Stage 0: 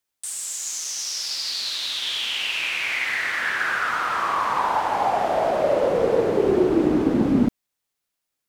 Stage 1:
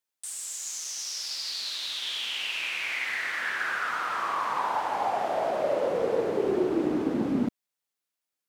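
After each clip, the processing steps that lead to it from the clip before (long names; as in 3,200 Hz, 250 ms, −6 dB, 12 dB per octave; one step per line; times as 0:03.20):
high-pass filter 180 Hz 6 dB per octave
level −6 dB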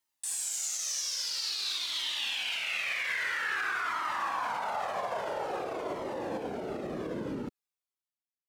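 fade-out on the ending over 2.67 s
brickwall limiter −28 dBFS, peak gain reduction 11.5 dB
flanger whose copies keep moving one way falling 0.5 Hz
level +8 dB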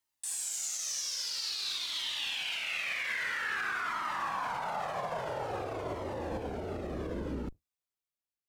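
sub-octave generator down 2 octaves, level 0 dB
level −2 dB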